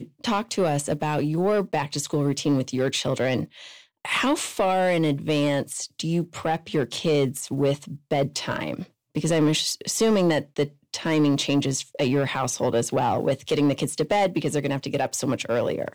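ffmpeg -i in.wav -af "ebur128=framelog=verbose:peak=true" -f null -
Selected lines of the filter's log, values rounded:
Integrated loudness:
  I:         -24.4 LUFS
  Threshold: -34.5 LUFS
Loudness range:
  LRA:         2.1 LU
  Threshold: -44.4 LUFS
  LRA low:   -25.5 LUFS
  LRA high:  -23.4 LUFS
True peak:
  Peak:      -13.5 dBFS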